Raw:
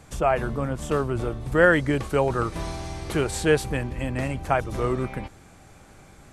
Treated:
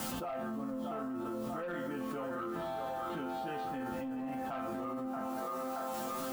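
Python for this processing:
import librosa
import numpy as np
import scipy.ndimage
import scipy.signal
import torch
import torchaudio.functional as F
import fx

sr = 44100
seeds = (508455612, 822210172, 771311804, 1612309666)

p1 = fx.peak_eq(x, sr, hz=1600.0, db=-10.0, octaves=2.0)
p2 = p1 + fx.echo_single(p1, sr, ms=190, db=-19.0, dry=0)
p3 = fx.rider(p2, sr, range_db=4, speed_s=0.5)
p4 = fx.cabinet(p3, sr, low_hz=160.0, low_slope=12, high_hz=3200.0, hz=(170.0, 260.0, 440.0, 930.0, 1300.0, 2300.0), db=(-8, 6, -9, 4, 9, -5))
p5 = fx.quant_dither(p4, sr, seeds[0], bits=8, dither='triangular')
p6 = p4 + (p5 * 10.0 ** (-4.0 / 20.0))
p7 = fx.resonator_bank(p6, sr, root=53, chord='major', decay_s=0.44)
p8 = 10.0 ** (-32.5 / 20.0) * np.tanh(p7 / 10.0 ** (-32.5 / 20.0))
p9 = fx.echo_wet_bandpass(p8, sr, ms=627, feedback_pct=33, hz=890.0, wet_db=-6.0)
p10 = fx.env_flatten(p9, sr, amount_pct=100)
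y = p10 * 10.0 ** (-3.0 / 20.0)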